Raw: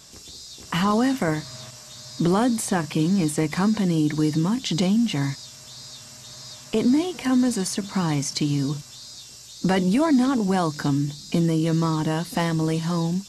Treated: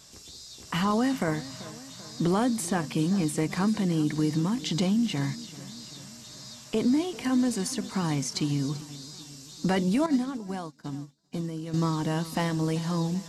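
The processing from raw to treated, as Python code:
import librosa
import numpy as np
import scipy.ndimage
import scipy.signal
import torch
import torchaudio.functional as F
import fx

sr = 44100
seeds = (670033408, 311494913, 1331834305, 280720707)

y = fx.echo_feedback(x, sr, ms=388, feedback_pct=58, wet_db=-17.5)
y = fx.upward_expand(y, sr, threshold_db=-37.0, expansion=2.5, at=(10.06, 11.74))
y = F.gain(torch.from_numpy(y), -4.5).numpy()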